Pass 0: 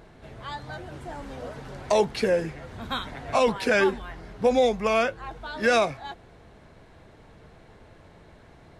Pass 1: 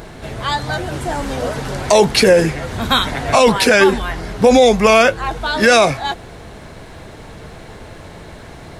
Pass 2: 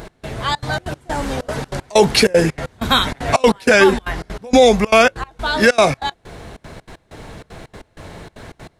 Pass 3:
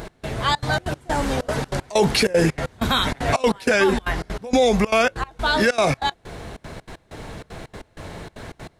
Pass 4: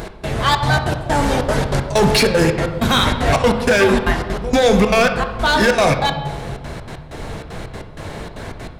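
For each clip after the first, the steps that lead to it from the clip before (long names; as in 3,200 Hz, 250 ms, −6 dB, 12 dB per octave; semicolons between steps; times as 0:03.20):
high-shelf EQ 4,800 Hz +9 dB; boost into a limiter +16.5 dB; level −1 dB
gate pattern "x..xxxx.xx." 192 BPM −24 dB
brickwall limiter −9 dBFS, peak gain reduction 7 dB
hard clipping −15 dBFS, distortion −14 dB; on a send at −6 dB: convolution reverb RT60 1.3 s, pre-delay 20 ms; on the sum: level +5 dB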